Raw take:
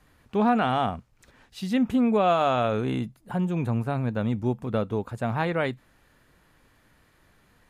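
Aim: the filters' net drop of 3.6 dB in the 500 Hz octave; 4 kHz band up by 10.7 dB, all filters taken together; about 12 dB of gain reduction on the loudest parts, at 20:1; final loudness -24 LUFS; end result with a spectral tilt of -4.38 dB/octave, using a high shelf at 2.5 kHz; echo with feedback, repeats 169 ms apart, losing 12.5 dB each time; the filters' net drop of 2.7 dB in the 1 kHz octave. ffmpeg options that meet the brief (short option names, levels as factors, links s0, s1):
-af "equalizer=f=500:t=o:g=-4,equalizer=f=1000:t=o:g=-4,highshelf=f=2500:g=8,equalizer=f=4000:t=o:g=7.5,acompressor=threshold=0.0282:ratio=20,aecho=1:1:169|338|507:0.237|0.0569|0.0137,volume=3.98"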